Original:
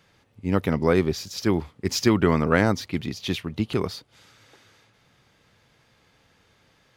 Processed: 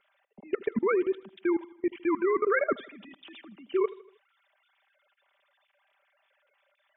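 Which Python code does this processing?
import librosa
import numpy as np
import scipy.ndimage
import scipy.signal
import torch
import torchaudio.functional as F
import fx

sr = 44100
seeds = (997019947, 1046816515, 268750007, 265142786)

p1 = fx.sine_speech(x, sr)
p2 = p1 + 0.64 * np.pad(p1, (int(5.1 * sr / 1000.0), 0))[:len(p1)]
p3 = fx.level_steps(p2, sr, step_db=24)
y = p3 + fx.echo_feedback(p3, sr, ms=79, feedback_pct=49, wet_db=-19.0, dry=0)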